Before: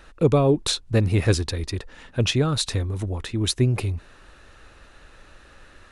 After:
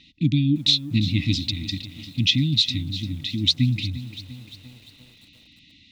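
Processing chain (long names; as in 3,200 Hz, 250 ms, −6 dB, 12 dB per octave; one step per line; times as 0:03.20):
linear-phase brick-wall band-stop 320–1,900 Hz
loudspeaker in its box 140–5,000 Hz, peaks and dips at 480 Hz −9 dB, 2,200 Hz −5 dB, 3,700 Hz +7 dB
feedback echo at a low word length 347 ms, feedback 55%, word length 8 bits, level −13.5 dB
level +3.5 dB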